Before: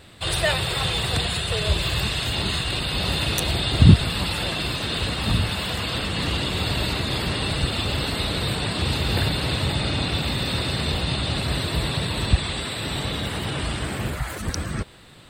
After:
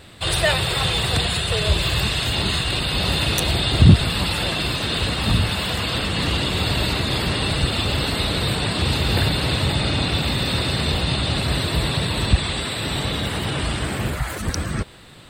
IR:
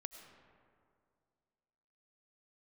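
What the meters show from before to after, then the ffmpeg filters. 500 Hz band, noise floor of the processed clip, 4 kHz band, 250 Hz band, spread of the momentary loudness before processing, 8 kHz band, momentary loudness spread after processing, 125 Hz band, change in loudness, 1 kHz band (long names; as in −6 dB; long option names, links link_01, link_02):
+3.0 dB, −29 dBFS, +3.0 dB, +2.5 dB, 5 LU, +3.0 dB, 5 LU, +2.5 dB, +3.0 dB, +3.0 dB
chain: -af "acontrast=30,volume=-2dB"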